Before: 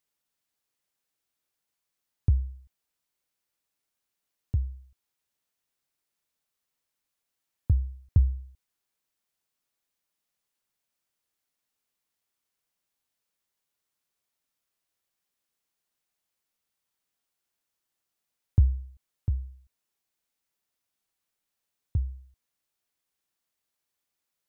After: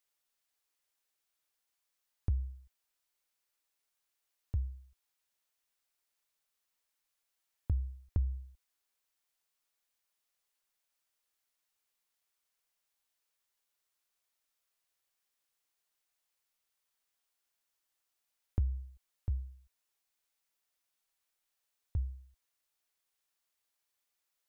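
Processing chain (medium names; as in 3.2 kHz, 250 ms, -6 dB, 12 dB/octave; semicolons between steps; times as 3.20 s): peaking EQ 160 Hz -11.5 dB 2.3 oct; compression, threshold -27 dBFS, peak gain reduction 6 dB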